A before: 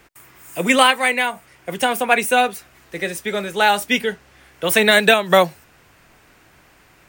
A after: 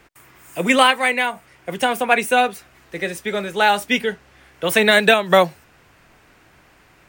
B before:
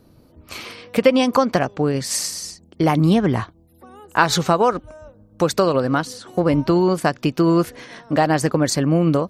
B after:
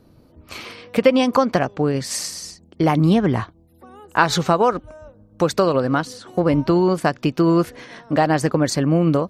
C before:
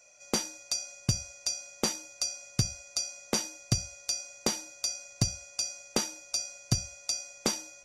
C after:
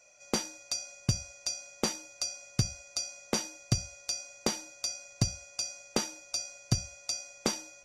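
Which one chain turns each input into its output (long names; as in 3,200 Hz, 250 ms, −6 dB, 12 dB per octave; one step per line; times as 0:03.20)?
high-shelf EQ 6,100 Hz −5.5 dB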